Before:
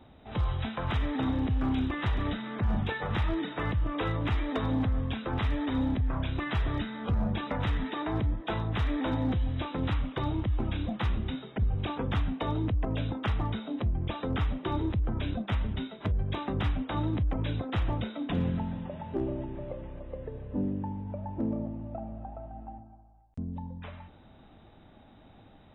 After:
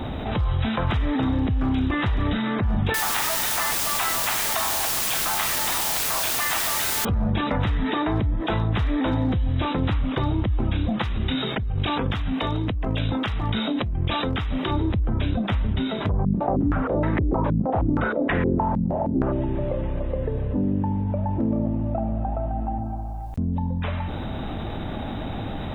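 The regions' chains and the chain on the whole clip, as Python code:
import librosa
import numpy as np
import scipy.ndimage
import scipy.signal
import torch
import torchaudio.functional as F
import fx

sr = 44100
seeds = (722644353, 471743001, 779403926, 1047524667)

y = fx.chain(x, sr, fx.steep_highpass(hz=640.0, slope=96),
    fx.quant_dither(seeds[0], bits=6, dither='triangular'), at=(2.94, 7.05))
y = fx.chain(y, sr, fx.tilt_shelf(db=-4.5, hz=1500.0),
    fx.over_compress(threshold_db=-37.0, ratio=-1.0), at=(11.02, 14.71))
y = fx.spec_clip(y, sr, under_db=12, at=(16.08, 19.31), fade=0.02)
y = fx.filter_held_lowpass(y, sr, hz=6.4, low_hz=200.0, high_hz=1900.0, at=(16.08, 19.31), fade=0.02)
y = fx.low_shelf(y, sr, hz=190.0, db=3.0)
y = fx.env_flatten(y, sr, amount_pct=70)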